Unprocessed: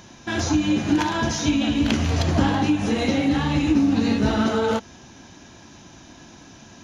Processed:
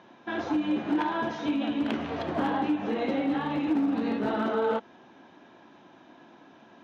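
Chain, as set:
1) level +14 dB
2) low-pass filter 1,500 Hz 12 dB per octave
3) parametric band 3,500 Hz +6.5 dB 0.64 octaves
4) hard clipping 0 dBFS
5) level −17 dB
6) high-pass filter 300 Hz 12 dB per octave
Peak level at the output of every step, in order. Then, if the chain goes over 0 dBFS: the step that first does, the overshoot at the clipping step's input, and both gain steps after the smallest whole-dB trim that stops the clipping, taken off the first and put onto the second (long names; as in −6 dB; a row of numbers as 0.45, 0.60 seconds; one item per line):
+6.5, +6.0, +6.0, 0.0, −17.0, −14.5 dBFS
step 1, 6.0 dB
step 1 +8 dB, step 5 −11 dB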